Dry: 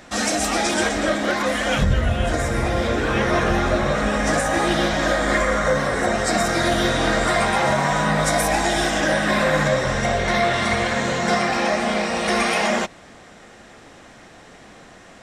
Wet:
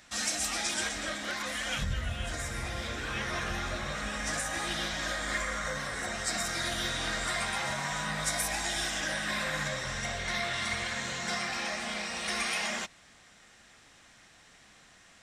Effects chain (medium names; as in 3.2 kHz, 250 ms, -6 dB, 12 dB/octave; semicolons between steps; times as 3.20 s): amplifier tone stack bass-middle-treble 5-5-5